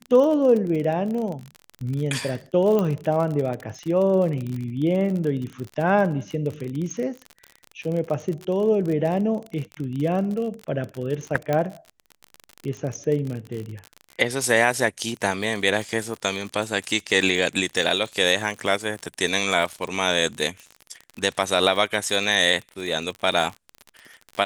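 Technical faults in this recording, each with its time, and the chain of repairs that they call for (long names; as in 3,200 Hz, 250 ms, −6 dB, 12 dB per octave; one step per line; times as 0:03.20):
surface crackle 42 per second −28 dBFS
0:02.79: click −12 dBFS
0:11.53: click −11 dBFS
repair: click removal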